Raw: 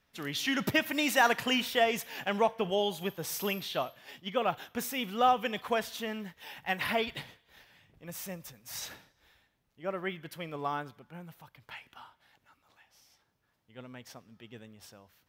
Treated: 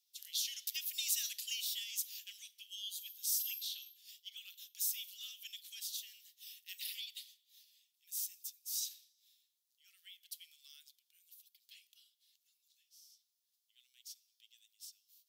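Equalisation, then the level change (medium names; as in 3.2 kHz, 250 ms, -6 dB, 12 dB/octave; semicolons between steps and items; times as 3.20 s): inverse Chebyshev high-pass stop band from 830 Hz, stop band 70 dB; differentiator; treble shelf 6.3 kHz -9 dB; +8.0 dB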